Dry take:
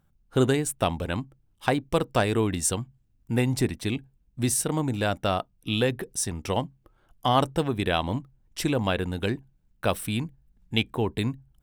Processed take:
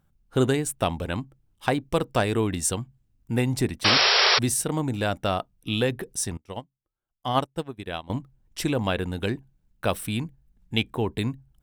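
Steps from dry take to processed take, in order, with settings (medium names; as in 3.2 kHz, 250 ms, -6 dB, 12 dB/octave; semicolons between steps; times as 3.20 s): 3.84–4.39 s: painted sound noise 370–5700 Hz -19 dBFS; 6.37–8.10 s: upward expansion 2.5:1, over -36 dBFS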